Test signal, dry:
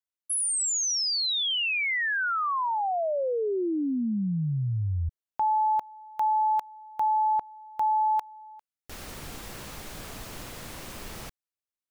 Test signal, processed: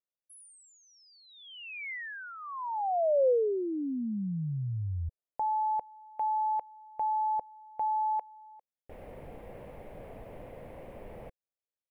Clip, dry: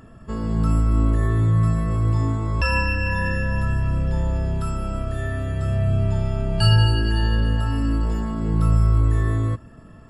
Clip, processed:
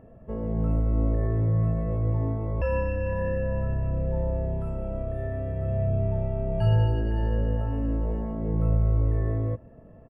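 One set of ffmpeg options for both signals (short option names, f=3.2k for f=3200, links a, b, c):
-af "firequalizer=gain_entry='entry(350,0);entry(510,10);entry(1300,-12);entry(2100,-5);entry(4100,-26);entry(6400,-30);entry(10000,-20)':delay=0.05:min_phase=1,volume=-5.5dB"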